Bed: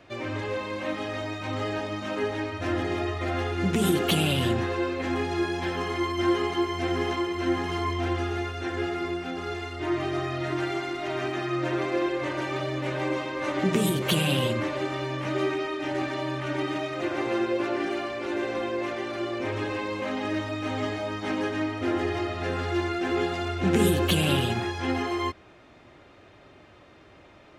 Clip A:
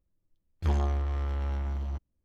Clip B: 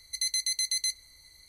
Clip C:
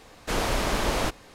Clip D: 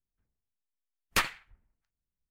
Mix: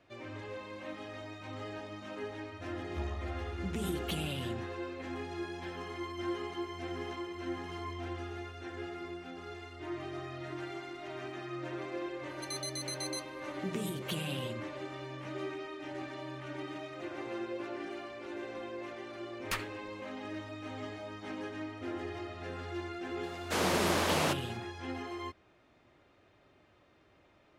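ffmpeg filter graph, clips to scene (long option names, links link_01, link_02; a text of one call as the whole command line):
ffmpeg -i bed.wav -i cue0.wav -i cue1.wav -i cue2.wav -i cue3.wav -filter_complex "[0:a]volume=-12.5dB[link_01];[3:a]highpass=200[link_02];[1:a]atrim=end=2.24,asetpts=PTS-STARTPTS,volume=-13dB,afade=type=in:duration=0.004:curve=hsin,afade=type=out:start_time=2.236:duration=0.004:curve=hsin,adelay=2310[link_03];[2:a]atrim=end=1.48,asetpts=PTS-STARTPTS,volume=-11.5dB,afade=type=in:duration=0.004:curve=hsin,afade=type=out:start_time=1.476:duration=0.004:curve=hsin,adelay=12290[link_04];[4:a]atrim=end=2.3,asetpts=PTS-STARTPTS,volume=-9dB,afade=type=in:duration=0.004:curve=hsin,afade=type=out:start_time=2.296:duration=0.004:curve=hsin,adelay=18350[link_05];[link_02]atrim=end=1.34,asetpts=PTS-STARTPTS,volume=-3dB,afade=type=in:duration=0.004:curve=hsin,afade=type=out:start_time=1.336:duration=0.004:curve=hsin,adelay=23230[link_06];[link_01][link_03][link_04][link_05][link_06]amix=inputs=5:normalize=0" out.wav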